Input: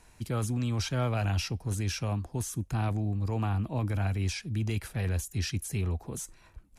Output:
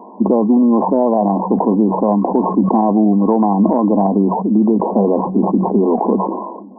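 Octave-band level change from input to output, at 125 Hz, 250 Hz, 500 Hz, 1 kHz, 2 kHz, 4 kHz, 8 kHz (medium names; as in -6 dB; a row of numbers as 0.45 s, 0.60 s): +4.5 dB, +23.5 dB, +23.5 dB, +23.0 dB, under -15 dB, under -35 dB, under -40 dB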